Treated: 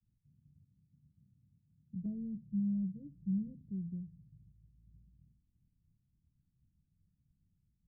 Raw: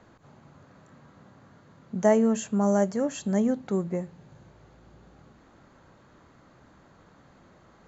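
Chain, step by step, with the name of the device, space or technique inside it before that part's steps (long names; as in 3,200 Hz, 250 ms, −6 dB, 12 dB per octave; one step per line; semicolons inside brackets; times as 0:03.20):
low shelf boost with a cut just above (low-shelf EQ 68 Hz +7 dB; parametric band 240 Hz −3 dB 0.97 octaves)
downward expander −47 dBFS
inverse Chebyshev low-pass filter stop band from 1,100 Hz, stop band 80 dB
0:02.05–0:03.61: comb filter 6.1 ms, depth 95%
level −5 dB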